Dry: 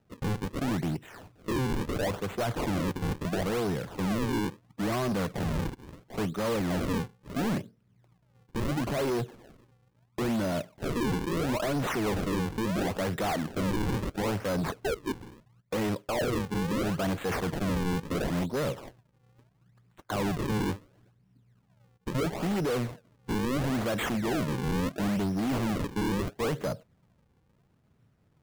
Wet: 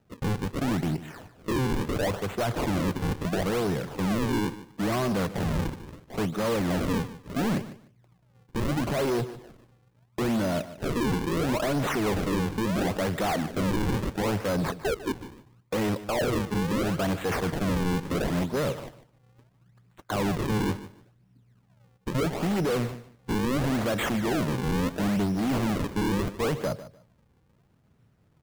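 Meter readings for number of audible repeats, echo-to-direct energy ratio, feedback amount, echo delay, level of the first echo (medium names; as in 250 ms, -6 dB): 2, -15.0 dB, 20%, 149 ms, -15.0 dB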